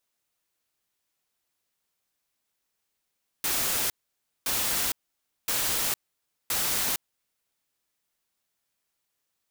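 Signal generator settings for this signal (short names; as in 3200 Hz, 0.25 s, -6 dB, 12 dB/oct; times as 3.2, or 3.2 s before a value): noise bursts white, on 0.46 s, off 0.56 s, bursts 4, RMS -27 dBFS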